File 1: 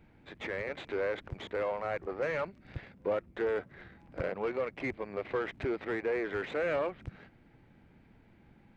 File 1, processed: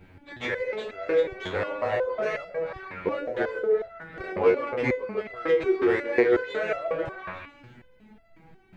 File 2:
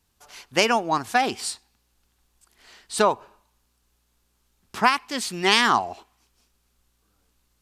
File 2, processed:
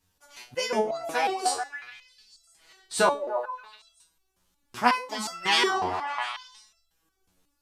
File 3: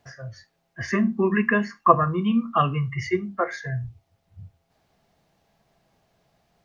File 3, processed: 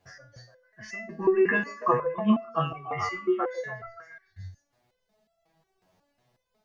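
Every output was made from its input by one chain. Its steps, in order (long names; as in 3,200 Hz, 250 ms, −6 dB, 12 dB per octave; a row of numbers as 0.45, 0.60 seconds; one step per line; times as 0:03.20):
echo through a band-pass that steps 144 ms, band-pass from 410 Hz, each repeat 0.7 octaves, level −2 dB
step-sequenced resonator 5.5 Hz 92–670 Hz
loudness normalisation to −27 LKFS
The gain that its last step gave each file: +19.5, +8.0, +6.5 decibels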